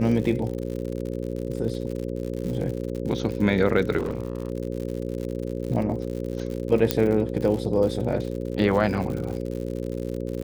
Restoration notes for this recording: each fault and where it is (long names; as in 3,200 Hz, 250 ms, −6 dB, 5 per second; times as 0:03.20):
mains buzz 60 Hz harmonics 9 −30 dBFS
surface crackle 92 per second −31 dBFS
0:03.98–0:04.50: clipping −22.5 dBFS
0:06.91: click −4 dBFS